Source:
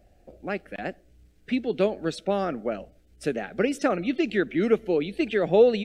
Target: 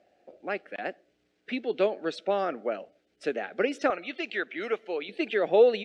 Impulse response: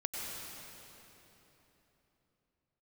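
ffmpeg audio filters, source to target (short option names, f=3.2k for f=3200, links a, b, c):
-af "asetnsamples=n=441:p=0,asendcmd='3.9 highpass f 680;5.09 highpass f 390',highpass=370,lowpass=4.6k"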